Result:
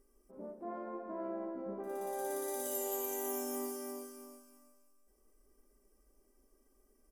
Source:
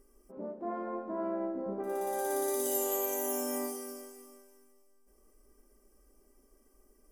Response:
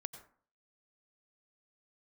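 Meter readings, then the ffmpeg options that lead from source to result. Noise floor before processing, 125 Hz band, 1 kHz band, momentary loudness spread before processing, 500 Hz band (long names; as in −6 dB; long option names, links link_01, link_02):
−66 dBFS, can't be measured, −5.5 dB, 14 LU, −5.5 dB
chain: -af "aecho=1:1:331|662|993:0.398|0.0995|0.0249,volume=-6dB"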